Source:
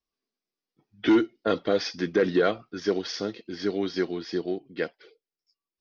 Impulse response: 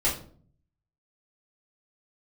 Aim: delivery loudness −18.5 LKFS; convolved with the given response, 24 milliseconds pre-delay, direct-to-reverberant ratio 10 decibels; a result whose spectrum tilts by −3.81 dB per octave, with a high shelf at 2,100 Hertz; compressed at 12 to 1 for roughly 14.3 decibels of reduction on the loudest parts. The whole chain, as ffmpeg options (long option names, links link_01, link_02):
-filter_complex "[0:a]highshelf=frequency=2100:gain=5.5,acompressor=threshold=-31dB:ratio=12,asplit=2[link_01][link_02];[1:a]atrim=start_sample=2205,adelay=24[link_03];[link_02][link_03]afir=irnorm=-1:irlink=0,volume=-20.5dB[link_04];[link_01][link_04]amix=inputs=2:normalize=0,volume=17.5dB"